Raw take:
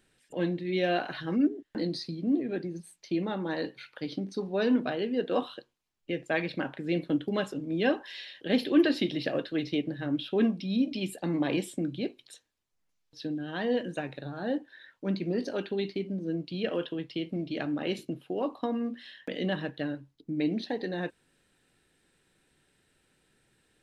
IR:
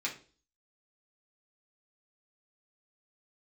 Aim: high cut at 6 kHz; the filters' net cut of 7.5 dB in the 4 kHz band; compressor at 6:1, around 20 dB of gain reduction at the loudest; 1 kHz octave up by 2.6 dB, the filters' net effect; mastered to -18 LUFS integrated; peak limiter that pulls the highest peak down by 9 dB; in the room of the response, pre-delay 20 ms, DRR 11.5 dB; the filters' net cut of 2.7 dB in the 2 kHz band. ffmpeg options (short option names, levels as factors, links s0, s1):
-filter_complex "[0:a]lowpass=6000,equalizer=f=1000:t=o:g=5,equalizer=f=2000:t=o:g=-3.5,equalizer=f=4000:t=o:g=-8.5,acompressor=threshold=0.0112:ratio=6,alimiter=level_in=3.76:limit=0.0631:level=0:latency=1,volume=0.266,asplit=2[s0][s1];[1:a]atrim=start_sample=2205,adelay=20[s2];[s1][s2]afir=irnorm=-1:irlink=0,volume=0.168[s3];[s0][s3]amix=inputs=2:normalize=0,volume=22.4"